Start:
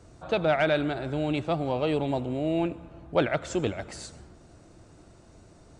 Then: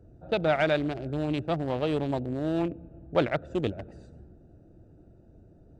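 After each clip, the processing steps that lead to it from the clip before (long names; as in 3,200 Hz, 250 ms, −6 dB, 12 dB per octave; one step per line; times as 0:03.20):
adaptive Wiener filter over 41 samples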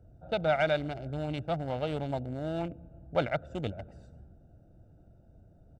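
comb filter 1.4 ms, depth 49%
level −4.5 dB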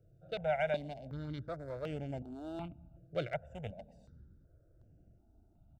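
step-sequenced phaser 2.7 Hz 240–3,900 Hz
level −5 dB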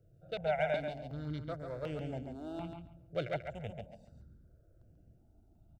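repeating echo 139 ms, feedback 18%, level −6 dB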